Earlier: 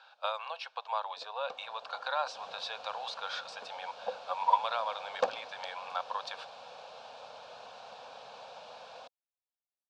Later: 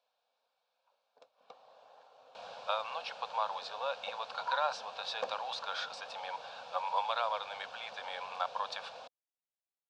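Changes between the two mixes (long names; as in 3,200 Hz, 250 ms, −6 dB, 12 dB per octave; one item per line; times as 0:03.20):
speech: entry +2.45 s
first sound −8.5 dB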